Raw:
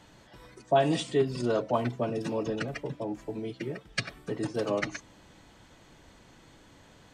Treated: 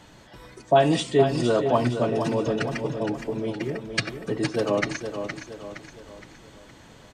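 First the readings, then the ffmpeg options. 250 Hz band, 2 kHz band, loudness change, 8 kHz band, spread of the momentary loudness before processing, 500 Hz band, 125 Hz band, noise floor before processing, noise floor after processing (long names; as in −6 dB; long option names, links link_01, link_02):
+6.5 dB, +6.5 dB, +6.0 dB, +6.5 dB, 10 LU, +6.5 dB, +6.5 dB, −57 dBFS, −50 dBFS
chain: -af "aecho=1:1:466|932|1398|1864|2330:0.398|0.179|0.0806|0.0363|0.0163,volume=5.5dB"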